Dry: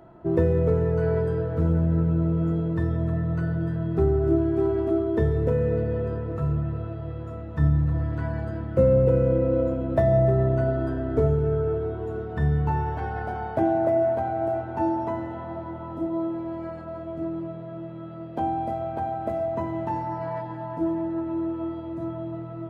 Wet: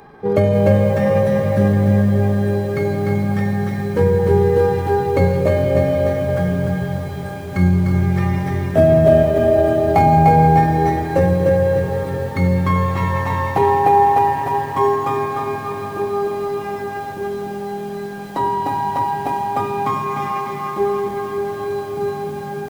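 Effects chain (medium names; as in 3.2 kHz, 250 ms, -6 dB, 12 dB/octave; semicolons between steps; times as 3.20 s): treble shelf 2.5 kHz +12 dB; hum notches 60/120 Hz; pitch shift +3.5 st; on a send: feedback echo behind a low-pass 81 ms, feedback 51%, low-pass 530 Hz, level -20 dB; on the sum: bit-crushed delay 299 ms, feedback 55%, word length 8-bit, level -4.5 dB; trim +6 dB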